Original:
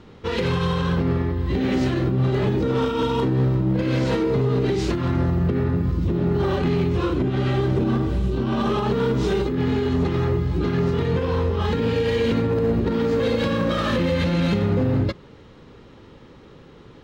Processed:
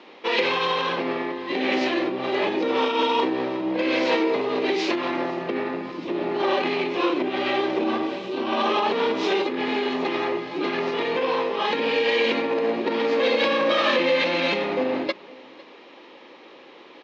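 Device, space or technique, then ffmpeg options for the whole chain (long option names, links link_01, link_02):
phone speaker on a table: -af "lowpass=5000,highpass=frequency=350:width=0.5412,highpass=frequency=350:width=1.3066,equalizer=frequency=430:width_type=q:width=4:gain=-9,equalizer=frequency=1400:width_type=q:width=4:gain=-8,equalizer=frequency=2400:width_type=q:width=4:gain=5,lowpass=frequency=6400:width=0.5412,lowpass=frequency=6400:width=1.3066,aecho=1:1:504:0.0668,volume=6.5dB"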